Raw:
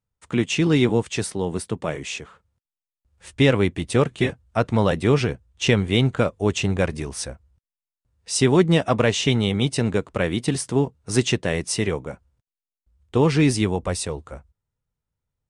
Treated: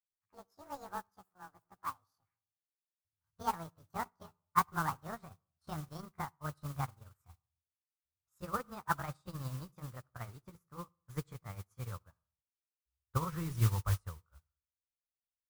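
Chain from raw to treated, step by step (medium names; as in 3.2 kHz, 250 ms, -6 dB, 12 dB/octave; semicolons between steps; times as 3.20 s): pitch bend over the whole clip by +11.5 st ending unshifted; FFT filter 100 Hz 0 dB, 250 Hz -23 dB, 670 Hz -20 dB, 1.2 kHz -1 dB, 2.9 kHz -28 dB, 5.5 kHz -23 dB; modulation noise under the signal 15 dB; on a send at -15.5 dB: reverberation RT60 0.70 s, pre-delay 52 ms; on the sum: upward expansion 2.5:1, over -48 dBFS; trim +4 dB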